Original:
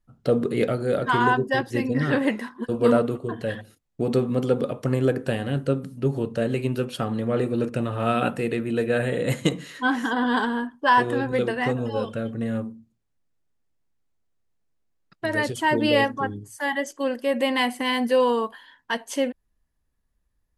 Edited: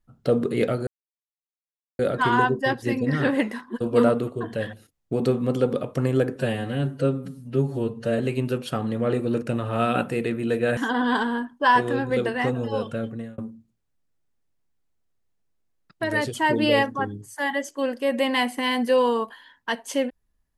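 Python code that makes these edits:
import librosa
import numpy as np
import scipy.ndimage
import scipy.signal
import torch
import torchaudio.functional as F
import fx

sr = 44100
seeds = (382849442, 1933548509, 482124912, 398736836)

y = fx.edit(x, sr, fx.insert_silence(at_s=0.87, length_s=1.12),
    fx.stretch_span(start_s=5.24, length_s=1.22, factor=1.5),
    fx.cut(start_s=9.04, length_s=0.95),
    fx.fade_out_span(start_s=12.26, length_s=0.34), tone=tone)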